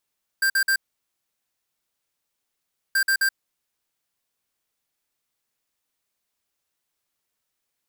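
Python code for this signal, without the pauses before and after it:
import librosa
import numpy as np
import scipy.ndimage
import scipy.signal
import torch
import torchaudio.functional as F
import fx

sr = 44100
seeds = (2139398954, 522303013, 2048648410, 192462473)

y = fx.beep_pattern(sr, wave='square', hz=1580.0, on_s=0.08, off_s=0.05, beeps=3, pause_s=2.19, groups=2, level_db=-20.0)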